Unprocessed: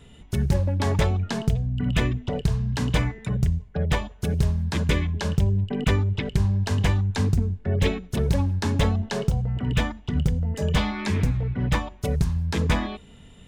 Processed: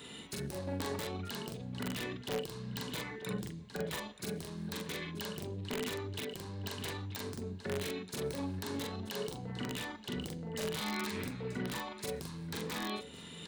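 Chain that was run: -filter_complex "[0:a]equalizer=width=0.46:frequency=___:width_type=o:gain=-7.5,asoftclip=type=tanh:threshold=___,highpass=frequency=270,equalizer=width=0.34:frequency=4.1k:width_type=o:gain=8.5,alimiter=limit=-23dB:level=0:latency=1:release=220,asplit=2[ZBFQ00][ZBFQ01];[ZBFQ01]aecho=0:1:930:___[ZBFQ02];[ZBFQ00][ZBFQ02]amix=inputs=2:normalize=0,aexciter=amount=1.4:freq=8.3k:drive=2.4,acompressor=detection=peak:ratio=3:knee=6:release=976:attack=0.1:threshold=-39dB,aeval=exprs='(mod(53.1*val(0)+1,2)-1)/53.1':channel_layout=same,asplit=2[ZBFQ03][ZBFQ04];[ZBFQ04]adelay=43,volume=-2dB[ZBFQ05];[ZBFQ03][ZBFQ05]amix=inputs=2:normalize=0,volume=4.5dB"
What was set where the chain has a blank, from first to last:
670, -16.5dB, 0.133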